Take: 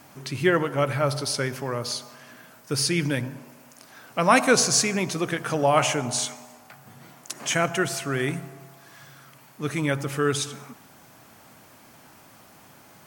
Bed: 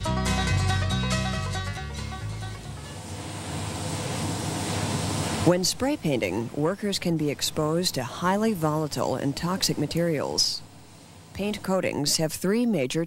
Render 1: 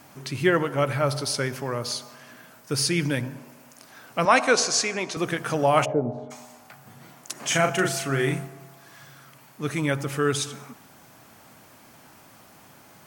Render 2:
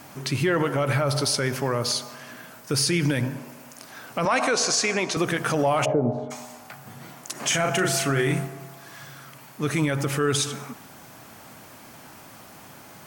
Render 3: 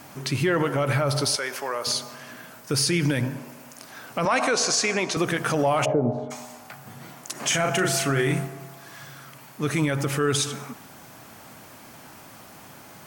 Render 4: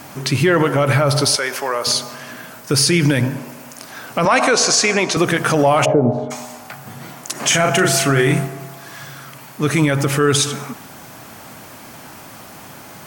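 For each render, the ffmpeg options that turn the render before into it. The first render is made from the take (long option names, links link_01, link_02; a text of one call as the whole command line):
ffmpeg -i in.wav -filter_complex "[0:a]asettb=1/sr,asplit=3[link_01][link_02][link_03];[link_01]atrim=end=4.254[link_04];[link_02]atrim=start=4.25:end=5.17,asetpts=PTS-STARTPTS,afade=type=in:duration=0.004:curve=qsin,afade=type=out:start_time=0.916:duration=0.004:curve=qsin,highpass=330,lowpass=6700[link_05];[link_03]atrim=start=5.166[link_06];[link_04][link_05]acrossfade=duration=0.004:curve1=hsin:curve2=qsin[link_07];[link_07][link_06]acrossfade=duration=0.004:curve1=qsin:curve2=hsin,asplit=3[link_08][link_09][link_10];[link_08]afade=type=out:start_time=5.84:duration=0.02[link_11];[link_09]lowpass=frequency=500:width_type=q:width=2.2,afade=type=in:start_time=5.84:duration=0.02,afade=type=out:start_time=6.3:duration=0.02[link_12];[link_10]afade=type=in:start_time=6.3:duration=0.02[link_13];[link_11][link_12][link_13]amix=inputs=3:normalize=0,asettb=1/sr,asplit=3[link_14][link_15][link_16];[link_14]atrim=end=7.474[link_17];[link_15]atrim=start=7.47:end=8.47,asetpts=PTS-STARTPTS,afade=type=in:duration=0.004:curve=qsin,afade=type=out:start_time=0.996:duration=0.004:curve=qsin,asplit=2[link_18][link_19];[link_19]adelay=37,volume=-4dB[link_20];[link_18][link_20]amix=inputs=2:normalize=0,atrim=end_sample=44100[link_21];[link_16]atrim=start=8.466[link_22];[link_17][link_21]acrossfade=duration=0.004:curve1=hsin:curve2=qsin[link_23];[link_23][link_22]acrossfade=duration=0.004:curve1=qsin:curve2=hsin" out.wav
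ffmpeg -i in.wav -af "acontrast=36,alimiter=limit=-13.5dB:level=0:latency=1:release=50" out.wav
ffmpeg -i in.wav -filter_complex "[0:a]asettb=1/sr,asplit=3[link_01][link_02][link_03];[link_01]atrim=end=1.364[link_04];[link_02]atrim=start=1.36:end=1.87,asetpts=PTS-STARTPTS,afade=type=in:duration=0.004:curve=qsin,afade=type=out:start_time=0.506:duration=0.004:curve=qsin,highpass=560[link_05];[link_03]atrim=start=1.866[link_06];[link_04][link_05]acrossfade=duration=0.004:curve1=hsin:curve2=qsin[link_07];[link_07][link_06]acrossfade=duration=0.004:curve1=qsin:curve2=hsin" out.wav
ffmpeg -i in.wav -af "volume=8dB" out.wav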